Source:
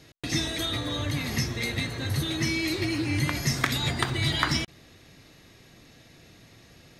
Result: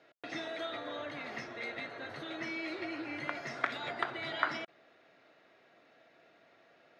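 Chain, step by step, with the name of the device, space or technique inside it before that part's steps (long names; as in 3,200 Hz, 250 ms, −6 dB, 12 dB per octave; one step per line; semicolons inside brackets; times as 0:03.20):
tin-can telephone (band-pass filter 420–2,300 Hz; hollow resonant body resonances 650/1,400 Hz, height 8 dB, ringing for 20 ms)
level −6.5 dB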